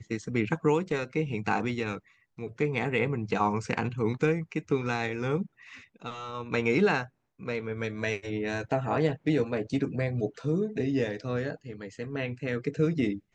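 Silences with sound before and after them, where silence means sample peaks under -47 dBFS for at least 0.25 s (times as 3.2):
1.99–2.38
7.07–7.4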